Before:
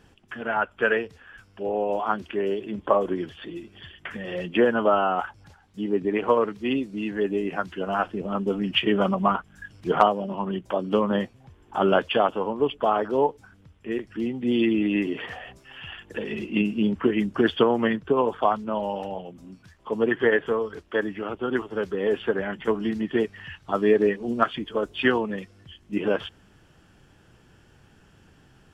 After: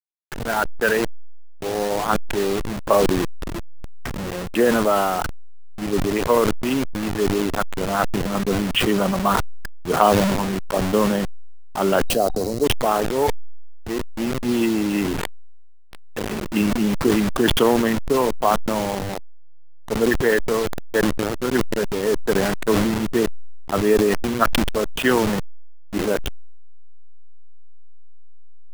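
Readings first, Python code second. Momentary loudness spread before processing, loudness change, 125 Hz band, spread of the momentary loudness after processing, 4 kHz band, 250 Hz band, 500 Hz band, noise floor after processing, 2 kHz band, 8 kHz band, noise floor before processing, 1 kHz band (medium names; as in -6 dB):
15 LU, +4.0 dB, +8.0 dB, 11 LU, +5.5 dB, +4.0 dB, +3.0 dB, -34 dBFS, +3.0 dB, no reading, -57 dBFS, +3.0 dB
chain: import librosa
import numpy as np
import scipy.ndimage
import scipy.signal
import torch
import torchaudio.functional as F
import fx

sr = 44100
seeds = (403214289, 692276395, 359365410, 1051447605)

p1 = fx.delta_hold(x, sr, step_db=-26.0)
p2 = fx.rider(p1, sr, range_db=4, speed_s=0.5)
p3 = p1 + (p2 * 10.0 ** (1.0 / 20.0))
p4 = fx.spec_box(p3, sr, start_s=12.08, length_s=0.56, low_hz=760.0, high_hz=3800.0, gain_db=-13)
p5 = fx.sustainer(p4, sr, db_per_s=25.0)
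y = p5 * 10.0 ** (-4.0 / 20.0)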